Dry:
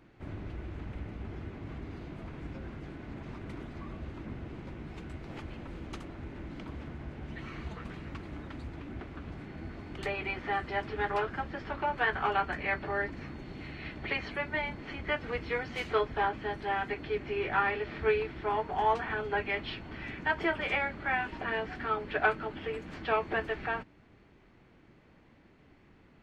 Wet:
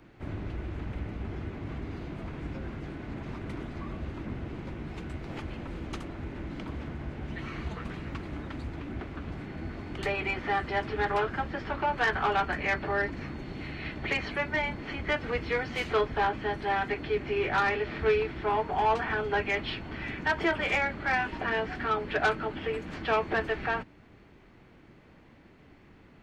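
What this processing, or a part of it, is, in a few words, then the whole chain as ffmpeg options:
one-band saturation: -filter_complex "[0:a]acrossover=split=290|5000[a][b][c];[b]asoftclip=type=tanh:threshold=-24dB[d];[a][d][c]amix=inputs=3:normalize=0,volume=4.5dB"

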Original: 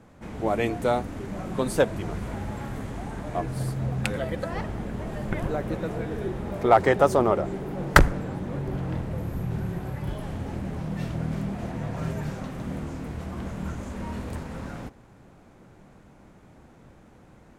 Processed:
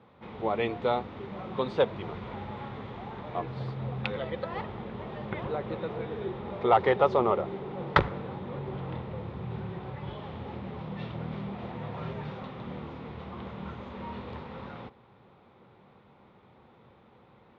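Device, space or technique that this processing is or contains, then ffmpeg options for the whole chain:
overdrive pedal into a guitar cabinet: -filter_complex "[0:a]asplit=2[a][b];[b]highpass=f=720:p=1,volume=9dB,asoftclip=type=tanh:threshold=-3dB[c];[a][c]amix=inputs=2:normalize=0,lowpass=f=1.1k:p=1,volume=-6dB,highpass=92,equalizer=f=170:t=q:w=4:g=-4,equalizer=f=290:t=q:w=4:g=-10,equalizer=f=650:t=q:w=4:g=-8,equalizer=f=1.6k:t=q:w=4:g=-8,equalizer=f=3.6k:t=q:w=4:g=8,lowpass=f=4.2k:w=0.5412,lowpass=f=4.2k:w=1.3066"

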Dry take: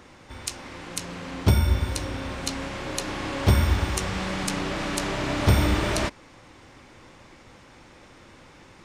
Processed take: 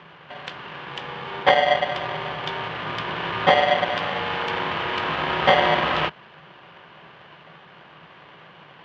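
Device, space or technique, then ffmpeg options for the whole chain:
ring modulator pedal into a guitar cabinet: -af "aeval=exprs='val(0)*sgn(sin(2*PI*660*n/s))':c=same,highpass=82,equalizer=f=87:t=q:w=4:g=-4,equalizer=f=160:t=q:w=4:g=10,equalizer=f=280:t=q:w=4:g=-4,equalizer=f=1.1k:t=q:w=4:g=6,equalizer=f=1.6k:t=q:w=4:g=4,equalizer=f=3k:t=q:w=4:g=6,lowpass=f=3.4k:w=0.5412,lowpass=f=3.4k:w=1.3066,volume=1dB"

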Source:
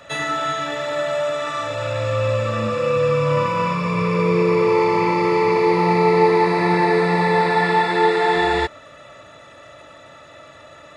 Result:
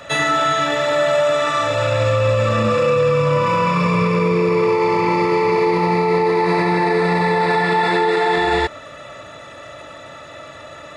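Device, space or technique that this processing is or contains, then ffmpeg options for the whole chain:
stacked limiters: -af "alimiter=limit=-10.5dB:level=0:latency=1:release=268,alimiter=limit=-15.5dB:level=0:latency=1:release=14,volume=6.5dB"

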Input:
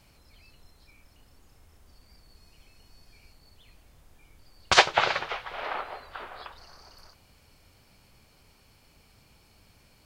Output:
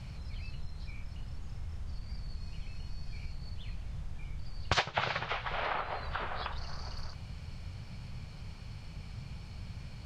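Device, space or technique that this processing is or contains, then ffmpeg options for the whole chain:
jukebox: -af "lowpass=5.8k,lowshelf=f=210:t=q:w=1.5:g=10.5,acompressor=threshold=-40dB:ratio=3,volume=7dB"

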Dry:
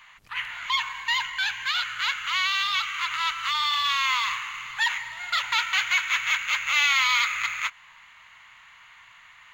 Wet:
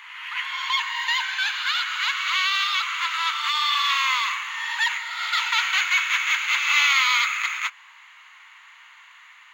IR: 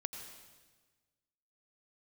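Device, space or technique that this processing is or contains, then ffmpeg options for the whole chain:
ghost voice: -filter_complex "[0:a]areverse[a];[1:a]atrim=start_sample=2205[b];[a][b]afir=irnorm=-1:irlink=0,areverse,highpass=f=780:w=0.5412,highpass=f=780:w=1.3066,volume=3.5dB"

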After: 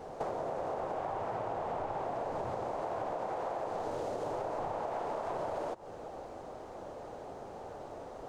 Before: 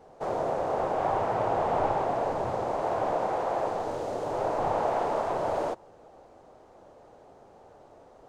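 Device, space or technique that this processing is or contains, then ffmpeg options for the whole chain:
serial compression, peaks first: -af "acompressor=threshold=-36dB:ratio=6,acompressor=threshold=-43dB:ratio=3,volume=8dB"

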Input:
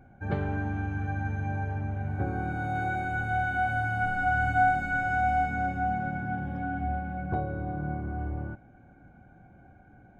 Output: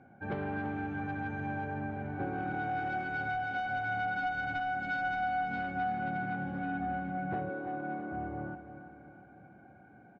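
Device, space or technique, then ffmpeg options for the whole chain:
AM radio: -filter_complex "[0:a]asettb=1/sr,asplit=3[a][b][c];[a]atrim=end=7.494[d];[b]atrim=start=7.49:end=8.12,asetpts=PTS-STARTPTS,afade=t=in:d=0.004:c=qsin,afade=t=out:st=0.626:d=0.004:c=qsin,highpass=f=210:w=0.5412,highpass=f=210:w=1.3066[e];[c]atrim=start=8.116[f];[d][e]acrossfade=d=0.004:c1=hsin:c2=qsin[g];[g][f]acrossfade=d=0.004:c1=qsin:c2=hsin,highpass=170,lowpass=3.3k,acompressor=threshold=-29dB:ratio=5,asoftclip=type=tanh:threshold=-26.5dB,aecho=1:1:334|668|1002|1336|1670|2004:0.266|0.141|0.0747|0.0396|0.021|0.0111"

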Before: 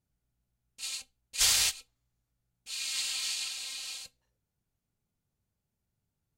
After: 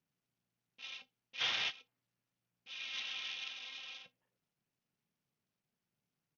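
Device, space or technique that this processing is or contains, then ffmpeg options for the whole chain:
Bluetooth headset: -af "highpass=f=140:w=0.5412,highpass=f=140:w=1.3066,aresample=8000,aresample=44100,volume=-3dB" -ar 48000 -c:a sbc -b:a 64k

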